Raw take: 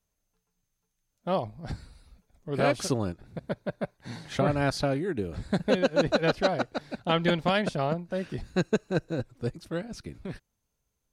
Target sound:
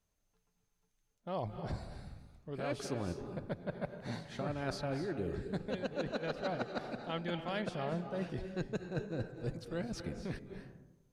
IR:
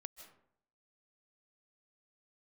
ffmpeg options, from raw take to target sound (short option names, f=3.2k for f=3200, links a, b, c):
-filter_complex "[0:a]highshelf=f=7.4k:g=-6.5,areverse,acompressor=threshold=-35dB:ratio=6,areverse[a];[1:a]atrim=start_sample=2205,asetrate=28224,aresample=44100[b];[a][b]afir=irnorm=-1:irlink=0,volume=3.5dB"